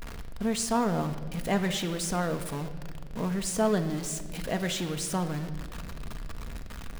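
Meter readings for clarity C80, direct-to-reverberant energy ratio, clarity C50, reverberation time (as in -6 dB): 12.0 dB, 6.5 dB, 11.0 dB, 1.9 s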